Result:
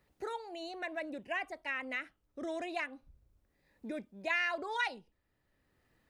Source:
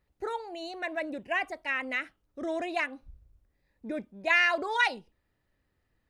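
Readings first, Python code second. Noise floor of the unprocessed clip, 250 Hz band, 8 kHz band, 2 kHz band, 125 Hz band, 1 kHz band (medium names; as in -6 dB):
-77 dBFS, -5.5 dB, -6.5 dB, -8.0 dB, no reading, -7.0 dB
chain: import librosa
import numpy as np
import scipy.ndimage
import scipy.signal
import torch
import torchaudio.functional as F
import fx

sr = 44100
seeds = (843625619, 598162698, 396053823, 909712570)

y = fx.band_squash(x, sr, depth_pct=40)
y = y * librosa.db_to_amplitude(-6.5)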